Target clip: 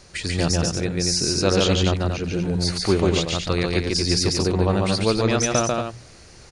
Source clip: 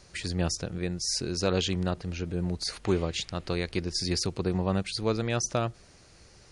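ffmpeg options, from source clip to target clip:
-af "bandreject=f=60:t=h:w=6,bandreject=f=120:t=h:w=6,bandreject=f=180:t=h:w=6,aecho=1:1:142.9|233.2:0.794|0.447,volume=2.11"

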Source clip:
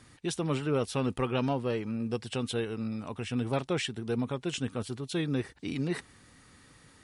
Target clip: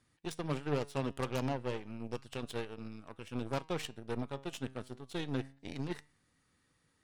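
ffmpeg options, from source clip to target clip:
-af "aeval=exprs='0.133*(cos(1*acos(clip(val(0)/0.133,-1,1)))-cos(1*PI/2))+0.0422*(cos(4*acos(clip(val(0)/0.133,-1,1)))-cos(4*PI/2))+0.0531*(cos(6*acos(clip(val(0)/0.133,-1,1)))-cos(6*PI/2))+0.0133*(cos(7*acos(clip(val(0)/0.133,-1,1)))-cos(7*PI/2))+0.015*(cos(8*acos(clip(val(0)/0.133,-1,1)))-cos(8*PI/2))':c=same,flanger=delay=5.9:depth=2.1:regen=89:speed=0.3:shape=triangular,volume=0.794"

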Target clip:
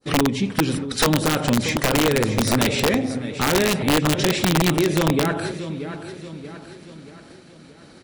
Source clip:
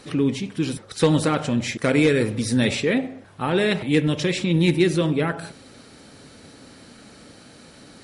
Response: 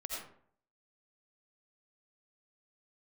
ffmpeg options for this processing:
-filter_complex "[0:a]asplit=2[s0][s1];[s1]volume=4.73,asoftclip=hard,volume=0.211,volume=0.422[s2];[s0][s2]amix=inputs=2:normalize=0,highshelf=f=7100:g=-7,acompressor=threshold=0.0708:ratio=6,adynamicequalizer=threshold=0.00708:dfrequency=2400:dqfactor=0.93:tfrequency=2400:tqfactor=0.93:attack=5:release=100:ratio=0.375:range=1.5:mode=cutabove:tftype=bell,agate=range=0.0224:threshold=0.02:ratio=3:detection=peak,bandreject=f=85.58:t=h:w=4,bandreject=f=171.16:t=h:w=4,bandreject=f=256.74:t=h:w=4,bandreject=f=342.32:t=h:w=4,bandreject=f=427.9:t=h:w=4,bandreject=f=513.48:t=h:w=4,bandreject=f=599.06:t=h:w=4,asplit=2[s3][s4];[s4]aecho=0:1:630|1260|1890|2520|3150:0.282|0.135|0.0649|0.0312|0.015[s5];[s3][s5]amix=inputs=2:normalize=0,acontrast=87,aeval=exprs='(mod(3.76*val(0)+1,2)-1)/3.76':c=same"

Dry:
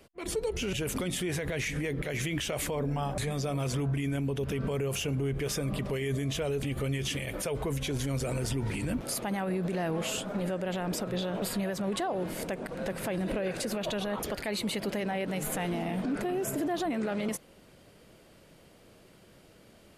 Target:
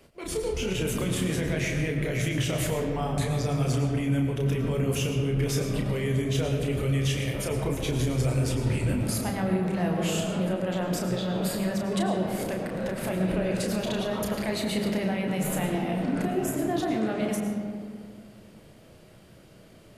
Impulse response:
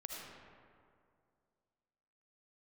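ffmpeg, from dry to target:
-filter_complex "[0:a]asplit=2[s0][s1];[s1]equalizer=f=110:t=o:w=2:g=8.5[s2];[1:a]atrim=start_sample=2205,adelay=32[s3];[s2][s3]afir=irnorm=-1:irlink=0,volume=1.06[s4];[s0][s4]amix=inputs=2:normalize=0"

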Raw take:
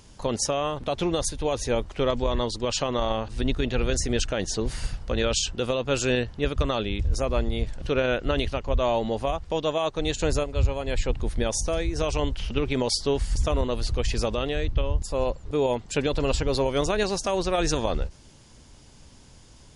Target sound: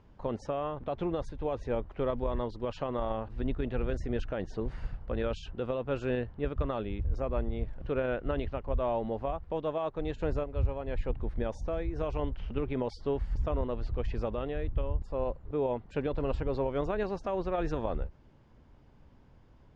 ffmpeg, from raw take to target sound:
-af "lowpass=1600,volume=0.473"

